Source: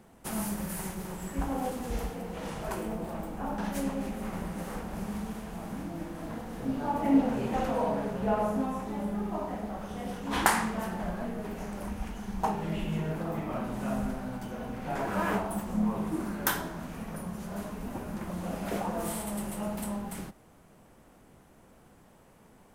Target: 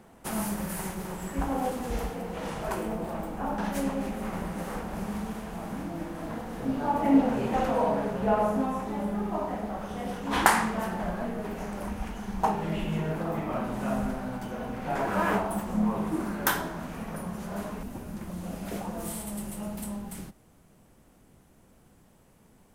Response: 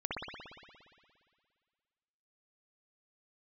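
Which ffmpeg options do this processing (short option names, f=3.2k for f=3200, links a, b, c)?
-af "asetnsamples=n=441:p=0,asendcmd='17.83 equalizer g -6',equalizer=f=960:w=0.35:g=3,volume=1dB"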